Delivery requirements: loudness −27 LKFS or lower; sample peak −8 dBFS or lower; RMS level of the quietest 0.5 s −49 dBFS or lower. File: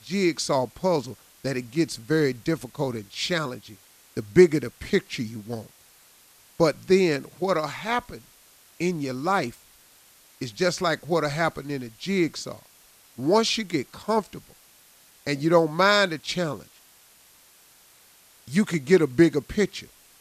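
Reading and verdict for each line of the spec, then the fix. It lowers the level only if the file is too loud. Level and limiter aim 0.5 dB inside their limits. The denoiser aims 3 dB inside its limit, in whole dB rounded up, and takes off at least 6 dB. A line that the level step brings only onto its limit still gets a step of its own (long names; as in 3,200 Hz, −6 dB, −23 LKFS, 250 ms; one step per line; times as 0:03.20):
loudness −24.5 LKFS: out of spec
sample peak −2.5 dBFS: out of spec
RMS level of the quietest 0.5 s −55 dBFS: in spec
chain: level −3 dB
brickwall limiter −8.5 dBFS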